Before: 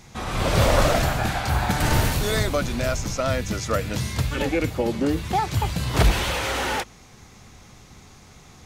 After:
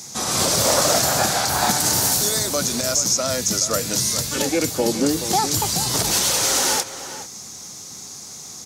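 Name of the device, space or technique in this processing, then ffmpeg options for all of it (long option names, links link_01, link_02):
over-bright horn tweeter: -filter_complex "[0:a]highpass=160,highshelf=frequency=3900:width_type=q:width=1.5:gain=13.5,alimiter=limit=-12.5dB:level=0:latency=1:release=237,asettb=1/sr,asplit=3[link_01][link_02][link_03];[link_01]atrim=end=0.644[link_04];[link_02]atrim=start=0.64:end=1.78,asetpts=PTS-STARTPTS,afade=type=in:duration=0.004:curve=qsin,afade=type=out:start_time=1.136:duration=0.004:curve=qsin,equalizer=frequency=1100:width=0.37:gain=4[link_05];[link_03]atrim=start=1.776[link_06];[link_04][link_05]acrossfade=duration=0.004:curve1=hsin:curve2=qsin[link_07];[link_07][link_06]acrossfade=duration=0.004:curve1=qsin:curve2=hsin,asplit=2[link_08][link_09];[link_09]adelay=425.7,volume=-11dB,highshelf=frequency=4000:gain=-9.58[link_10];[link_08][link_10]amix=inputs=2:normalize=0,volume=4dB"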